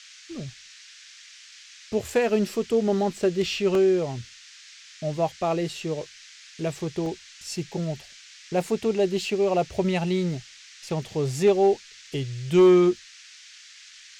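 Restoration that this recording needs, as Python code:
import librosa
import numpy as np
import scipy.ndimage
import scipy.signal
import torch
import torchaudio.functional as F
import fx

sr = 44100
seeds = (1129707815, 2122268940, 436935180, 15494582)

y = fx.fix_declip(x, sr, threshold_db=-11.5)
y = fx.fix_interpolate(y, sr, at_s=(3.75, 6.06, 7.06, 12.07), length_ms=1.5)
y = fx.noise_reduce(y, sr, print_start_s=4.36, print_end_s=4.86, reduce_db=20.0)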